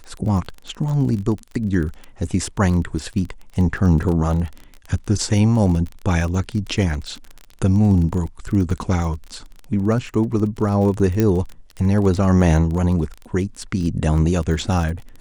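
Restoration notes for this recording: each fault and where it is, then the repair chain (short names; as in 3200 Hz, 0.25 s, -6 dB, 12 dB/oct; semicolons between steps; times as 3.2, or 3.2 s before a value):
crackle 25/s -26 dBFS
11.2 pop -6 dBFS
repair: de-click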